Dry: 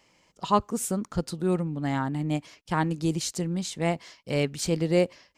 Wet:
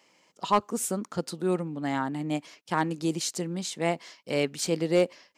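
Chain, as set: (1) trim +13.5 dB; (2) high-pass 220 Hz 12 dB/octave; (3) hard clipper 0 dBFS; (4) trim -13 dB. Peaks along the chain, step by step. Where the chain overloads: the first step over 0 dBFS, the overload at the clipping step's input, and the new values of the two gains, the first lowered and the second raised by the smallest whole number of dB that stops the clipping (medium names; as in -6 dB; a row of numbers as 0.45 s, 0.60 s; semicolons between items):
+4.5 dBFS, +5.5 dBFS, 0.0 dBFS, -13.0 dBFS; step 1, 5.5 dB; step 1 +7.5 dB, step 4 -7 dB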